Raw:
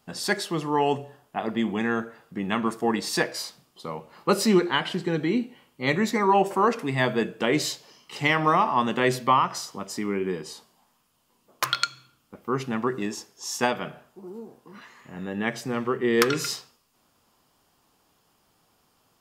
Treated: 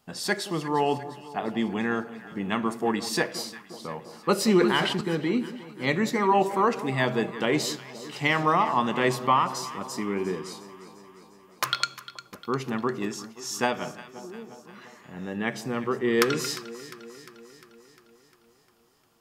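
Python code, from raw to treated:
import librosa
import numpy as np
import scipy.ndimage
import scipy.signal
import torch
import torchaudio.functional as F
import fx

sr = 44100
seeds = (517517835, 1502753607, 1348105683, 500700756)

y = fx.echo_alternate(x, sr, ms=176, hz=1000.0, feedback_pct=77, wet_db=-13.5)
y = fx.sustainer(y, sr, db_per_s=44.0, at=(4.44, 5.01))
y = F.gain(torch.from_numpy(y), -1.5).numpy()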